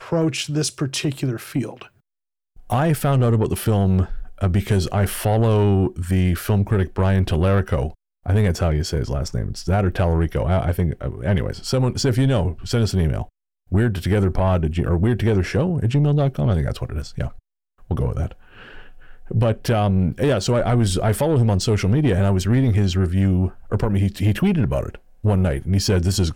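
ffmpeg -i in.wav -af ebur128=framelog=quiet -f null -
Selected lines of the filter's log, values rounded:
Integrated loudness:
  I:         -20.5 LUFS
  Threshold: -30.9 LUFS
Loudness range:
  LRA:         4.0 LU
  Threshold: -40.8 LUFS
  LRA low:   -23.1 LUFS
  LRA high:  -19.0 LUFS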